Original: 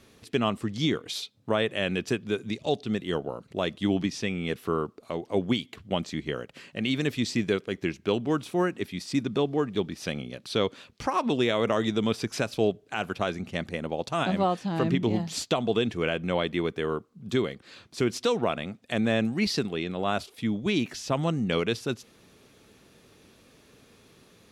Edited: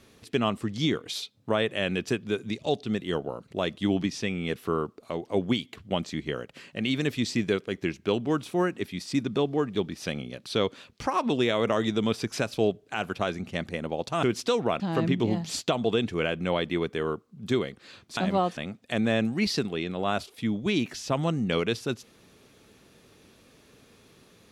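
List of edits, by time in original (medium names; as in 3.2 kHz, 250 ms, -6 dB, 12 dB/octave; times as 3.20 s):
14.23–14.63 s: swap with 18.00–18.57 s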